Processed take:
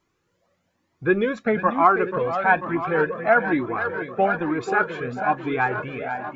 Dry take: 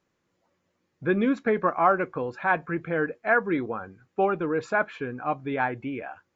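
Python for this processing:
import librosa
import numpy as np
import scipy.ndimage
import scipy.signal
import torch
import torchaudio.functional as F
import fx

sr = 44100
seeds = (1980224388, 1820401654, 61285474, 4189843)

y = fx.echo_tape(x, sr, ms=490, feedback_pct=71, wet_db=-8.0, lp_hz=5400.0, drive_db=10.0, wow_cents=22)
y = fx.comb_cascade(y, sr, direction='rising', hz=1.1)
y = y * librosa.db_to_amplitude(8.0)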